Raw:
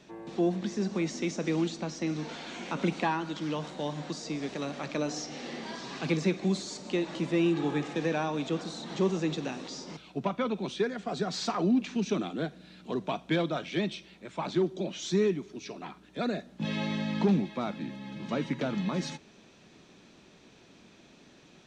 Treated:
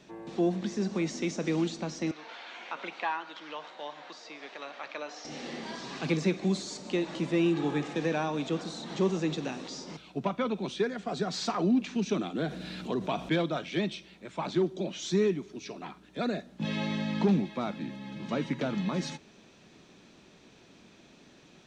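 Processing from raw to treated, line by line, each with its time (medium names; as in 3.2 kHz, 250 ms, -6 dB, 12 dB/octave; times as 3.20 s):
2.11–5.25 s: band-pass 760–3400 Hz
12.35–13.29 s: level flattener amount 50%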